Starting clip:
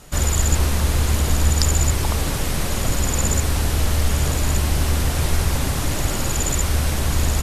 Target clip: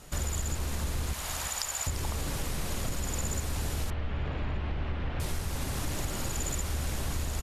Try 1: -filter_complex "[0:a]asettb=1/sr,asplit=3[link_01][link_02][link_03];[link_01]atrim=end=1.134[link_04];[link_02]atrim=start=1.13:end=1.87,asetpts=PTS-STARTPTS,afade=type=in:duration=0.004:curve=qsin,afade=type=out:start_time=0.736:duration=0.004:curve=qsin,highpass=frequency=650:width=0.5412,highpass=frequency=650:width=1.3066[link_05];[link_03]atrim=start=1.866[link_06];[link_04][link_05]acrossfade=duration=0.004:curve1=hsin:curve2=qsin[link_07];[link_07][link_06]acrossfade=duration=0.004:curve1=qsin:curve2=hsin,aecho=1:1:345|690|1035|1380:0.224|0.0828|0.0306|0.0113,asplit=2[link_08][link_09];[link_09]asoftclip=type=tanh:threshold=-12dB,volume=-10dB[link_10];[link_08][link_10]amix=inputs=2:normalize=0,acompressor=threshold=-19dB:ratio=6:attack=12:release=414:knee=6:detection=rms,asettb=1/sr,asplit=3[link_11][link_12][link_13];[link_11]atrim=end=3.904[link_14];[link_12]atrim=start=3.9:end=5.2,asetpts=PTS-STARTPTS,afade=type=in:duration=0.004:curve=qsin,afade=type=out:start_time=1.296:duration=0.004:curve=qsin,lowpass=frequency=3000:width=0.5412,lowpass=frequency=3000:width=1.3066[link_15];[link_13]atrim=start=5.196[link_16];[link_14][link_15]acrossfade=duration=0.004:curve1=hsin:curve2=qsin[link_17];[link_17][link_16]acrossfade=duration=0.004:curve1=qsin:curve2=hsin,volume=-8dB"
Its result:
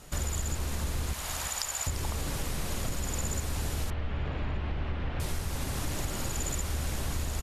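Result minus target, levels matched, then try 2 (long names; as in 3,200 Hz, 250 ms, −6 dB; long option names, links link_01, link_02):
soft clipping: distortion −9 dB
-filter_complex "[0:a]asettb=1/sr,asplit=3[link_01][link_02][link_03];[link_01]atrim=end=1.134[link_04];[link_02]atrim=start=1.13:end=1.87,asetpts=PTS-STARTPTS,afade=type=in:duration=0.004:curve=qsin,afade=type=out:start_time=0.736:duration=0.004:curve=qsin,highpass=frequency=650:width=0.5412,highpass=frequency=650:width=1.3066[link_05];[link_03]atrim=start=1.866[link_06];[link_04][link_05]acrossfade=duration=0.004:curve1=hsin:curve2=qsin[link_07];[link_07][link_06]acrossfade=duration=0.004:curve1=qsin:curve2=hsin,aecho=1:1:345|690|1035|1380:0.224|0.0828|0.0306|0.0113,asplit=2[link_08][link_09];[link_09]asoftclip=type=tanh:threshold=-20.5dB,volume=-10dB[link_10];[link_08][link_10]amix=inputs=2:normalize=0,acompressor=threshold=-19dB:ratio=6:attack=12:release=414:knee=6:detection=rms,asettb=1/sr,asplit=3[link_11][link_12][link_13];[link_11]atrim=end=3.904[link_14];[link_12]atrim=start=3.9:end=5.2,asetpts=PTS-STARTPTS,afade=type=in:duration=0.004:curve=qsin,afade=type=out:start_time=1.296:duration=0.004:curve=qsin,lowpass=frequency=3000:width=0.5412,lowpass=frequency=3000:width=1.3066[link_15];[link_13]atrim=start=5.196[link_16];[link_14][link_15]acrossfade=duration=0.004:curve1=hsin:curve2=qsin[link_17];[link_17][link_16]acrossfade=duration=0.004:curve1=qsin:curve2=hsin,volume=-8dB"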